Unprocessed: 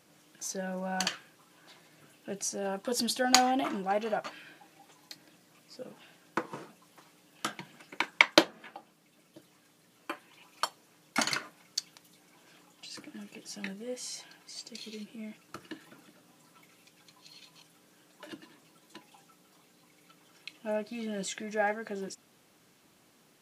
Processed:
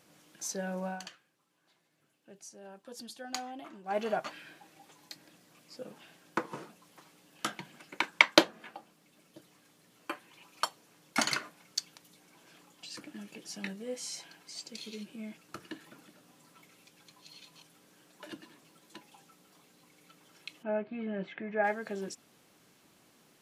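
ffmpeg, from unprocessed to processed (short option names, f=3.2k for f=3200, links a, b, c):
-filter_complex "[0:a]asplit=3[a][b][c];[a]afade=t=out:st=20.62:d=0.02[d];[b]lowpass=f=2.4k:w=0.5412,lowpass=f=2.4k:w=1.3066,afade=t=in:st=20.62:d=0.02,afade=t=out:st=21.63:d=0.02[e];[c]afade=t=in:st=21.63:d=0.02[f];[d][e][f]amix=inputs=3:normalize=0,asplit=3[g][h][i];[g]atrim=end=1.01,asetpts=PTS-STARTPTS,afade=t=out:st=0.86:d=0.15:silence=0.16788[j];[h]atrim=start=1.01:end=3.84,asetpts=PTS-STARTPTS,volume=-15.5dB[k];[i]atrim=start=3.84,asetpts=PTS-STARTPTS,afade=t=in:d=0.15:silence=0.16788[l];[j][k][l]concat=n=3:v=0:a=1"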